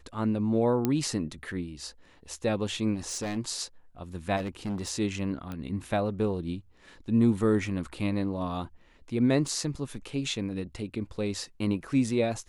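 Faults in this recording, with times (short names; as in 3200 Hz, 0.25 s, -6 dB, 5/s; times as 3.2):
0.85 pop -13 dBFS
2.94–3.37 clipped -29 dBFS
4.36–4.91 clipped -28.5 dBFS
5.52 pop -24 dBFS
9.48 gap 2.2 ms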